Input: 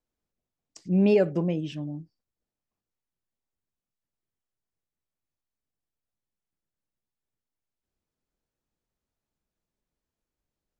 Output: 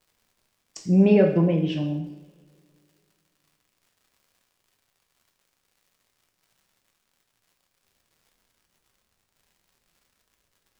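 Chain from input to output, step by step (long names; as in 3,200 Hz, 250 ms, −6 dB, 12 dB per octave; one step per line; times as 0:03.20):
treble cut that deepens with the level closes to 3,000 Hz, closed at −26 dBFS
in parallel at +2 dB: downward compressor, threshold −30 dBFS, peak gain reduction 13 dB
on the sum: surface crackle 170 per second −53 dBFS
coupled-rooms reverb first 0.68 s, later 2.6 s, from −24 dB, DRR 2 dB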